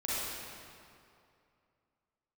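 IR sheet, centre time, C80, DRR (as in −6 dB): 177 ms, −3.0 dB, −9.0 dB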